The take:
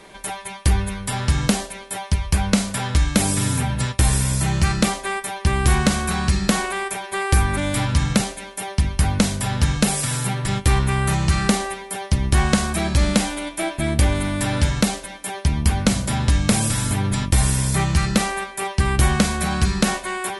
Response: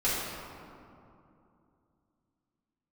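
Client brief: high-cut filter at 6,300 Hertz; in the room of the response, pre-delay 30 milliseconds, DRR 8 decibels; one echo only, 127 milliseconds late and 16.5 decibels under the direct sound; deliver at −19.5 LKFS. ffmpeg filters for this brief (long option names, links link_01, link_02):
-filter_complex "[0:a]lowpass=6300,aecho=1:1:127:0.15,asplit=2[link_01][link_02];[1:a]atrim=start_sample=2205,adelay=30[link_03];[link_02][link_03]afir=irnorm=-1:irlink=0,volume=-19dB[link_04];[link_01][link_04]amix=inputs=2:normalize=0,volume=1.5dB"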